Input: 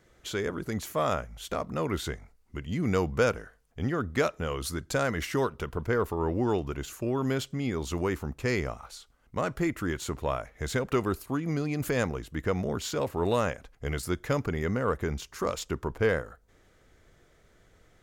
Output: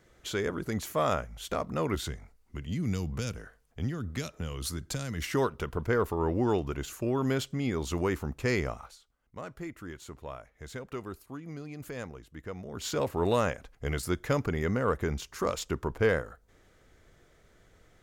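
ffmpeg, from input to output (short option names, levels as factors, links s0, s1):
-filter_complex "[0:a]asettb=1/sr,asplit=3[s0][s1][s2];[s0]atrim=end=1.954[s3];[s1]atrim=start=1.95:end=5.24,asetpts=PTS-STARTPTS,afade=t=in:d=0.004:c=qsin,afade=t=out:st=3.286:d=0.004:c=qsin,acrossover=split=230|3000[s4][s5][s6];[s5]acompressor=threshold=0.00891:ratio=6:attack=3.2:release=140:knee=2.83:detection=peak[s7];[s4][s7][s6]amix=inputs=3:normalize=0[s8];[s2]atrim=start=5.236[s9];[s3][s8]acrossfade=d=0.004:c1=hsin:c2=qsin[s10];[s10][s9]acrossfade=d=0.004:c1=qsin:c2=hsin,asplit=3[s11][s12][s13];[s11]atrim=end=8.97,asetpts=PTS-STARTPTS,afade=t=out:st=8.81:d=0.16:silence=0.266073[s14];[s12]atrim=start=8.97:end=12.72,asetpts=PTS-STARTPTS,volume=0.266[s15];[s13]atrim=start=12.72,asetpts=PTS-STARTPTS,afade=t=in:d=0.16:silence=0.266073[s16];[s14][s15][s16]concat=n=3:v=0:a=1"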